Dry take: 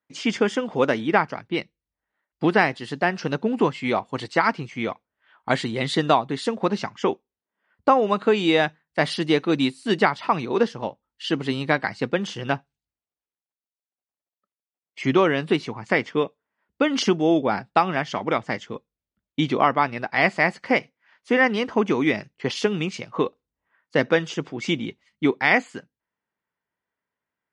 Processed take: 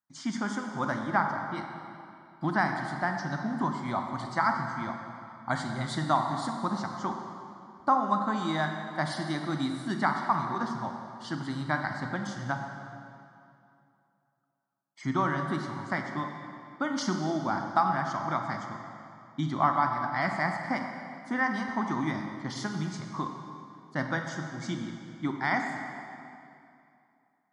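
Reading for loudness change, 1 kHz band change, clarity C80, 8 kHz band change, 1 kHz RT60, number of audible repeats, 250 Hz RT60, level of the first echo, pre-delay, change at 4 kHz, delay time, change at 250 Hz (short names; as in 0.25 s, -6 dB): -8.0 dB, -4.0 dB, 5.0 dB, -5.0 dB, 2.6 s, none, 2.6 s, none, 25 ms, -12.0 dB, none, -8.0 dB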